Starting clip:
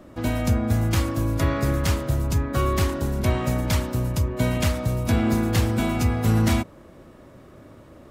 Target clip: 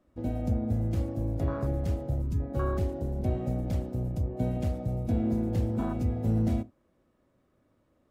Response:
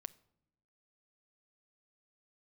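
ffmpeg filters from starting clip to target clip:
-filter_complex "[0:a]afwtdn=0.0631[a];[1:a]atrim=start_sample=2205,atrim=end_sample=6174,asetrate=74970,aresample=44100[b];[a][b]afir=irnorm=-1:irlink=0,volume=3dB"

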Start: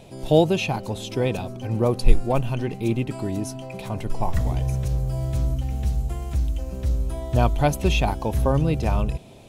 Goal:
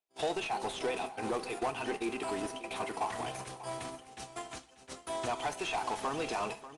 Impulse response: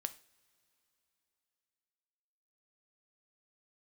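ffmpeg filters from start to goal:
-filter_complex "[0:a]highpass=f=400:p=1,aemphasis=mode=production:type=bsi,agate=range=-57dB:threshold=-36dB:ratio=16:detection=peak,equalizer=f=560:t=o:w=0.21:g=-14,acompressor=threshold=-37dB:ratio=5,asplit=2[a][b];[b]highpass=f=720:p=1,volume=23dB,asoftclip=type=tanh:threshold=-23.5dB[c];[a][c]amix=inputs=2:normalize=0,lowpass=f=1.4k:p=1,volume=-6dB,acrusher=bits=3:mode=log:mix=0:aa=0.000001,atempo=1.4,aecho=1:1:590:0.188[d];[1:a]atrim=start_sample=2205,afade=t=out:st=0.36:d=0.01,atrim=end_sample=16317[e];[d][e]afir=irnorm=-1:irlink=0,aresample=22050,aresample=44100,volume=2.5dB" -ar 48000 -c:a libopus -b:a 48k

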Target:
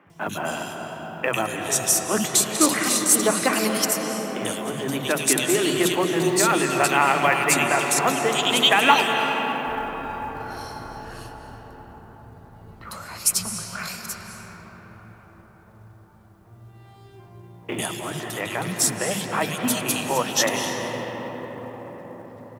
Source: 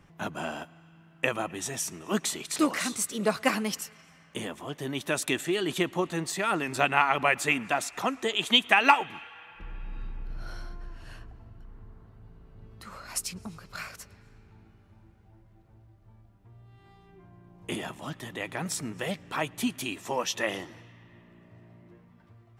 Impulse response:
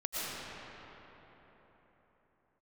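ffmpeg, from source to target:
-filter_complex "[0:a]highshelf=f=9.1k:g=8.5,asplit=2[a][b];[b]alimiter=limit=-15.5dB:level=0:latency=1,volume=1dB[c];[a][c]amix=inputs=2:normalize=0,highpass=86,acrossover=split=230|2500[d][e][f];[d]adelay=60[g];[f]adelay=100[h];[g][e][h]amix=inputs=3:normalize=0,asplit=2[i][j];[1:a]atrim=start_sample=2205,asetrate=24696,aresample=44100[k];[j][k]afir=irnorm=-1:irlink=0,volume=-11dB[l];[i][l]amix=inputs=2:normalize=0,acrusher=bits=9:mode=log:mix=0:aa=0.000001,equalizer=f=12k:t=o:w=2.7:g=3.5,volume=-2dB"

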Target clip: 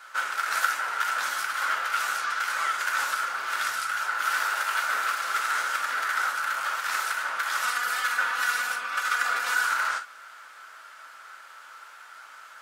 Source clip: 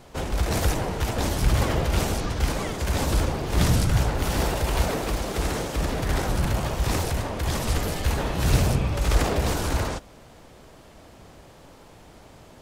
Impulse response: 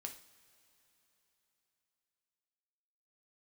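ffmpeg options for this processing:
-filter_complex "[0:a]asettb=1/sr,asplit=3[a][b][c];[a]atrim=end=7.634[d];[b]atrim=start=7.63:end=9.65,asetpts=PTS-STARTPTS,afade=t=in:d=0.004:c=qsin,afade=t=out:st=2.016:d=0.004:c=qsin,aecho=1:1:4.1:0.99,atrim=end_sample=89082[e];[c]atrim=start=9.646[f];[d][e]acrossfade=d=0.004:c1=hsin:c2=qsin[g];[g][f]acrossfade=d=0.004:c1=qsin:c2=hsin,acompressor=threshold=-25dB:ratio=2.5,highpass=f=1.4k:t=q:w=8.7[h];[1:a]atrim=start_sample=2205,atrim=end_sample=3087[i];[h][i]afir=irnorm=-1:irlink=0,volume=5dB"

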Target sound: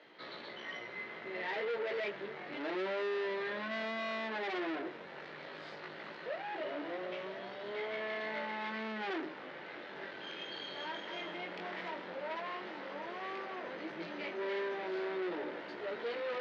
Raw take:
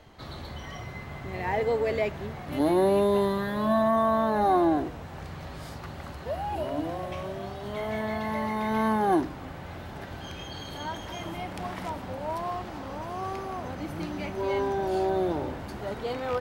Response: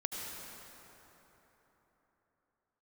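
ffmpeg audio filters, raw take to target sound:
-af "flanger=delay=16.5:depth=6.1:speed=0.13,aeval=exprs='(tanh(63.1*val(0)+0.4)-tanh(0.4))/63.1':c=same,highpass=f=250:w=0.5412,highpass=f=250:w=1.3066,equalizer=f=260:t=q:w=4:g=-10,equalizer=f=760:t=q:w=4:g=-8,equalizer=f=1.1k:t=q:w=4:g=-5,equalizer=f=1.9k:t=q:w=4:g=4,lowpass=f=4.2k:w=0.5412,lowpass=f=4.2k:w=1.3066,volume=3.5dB"

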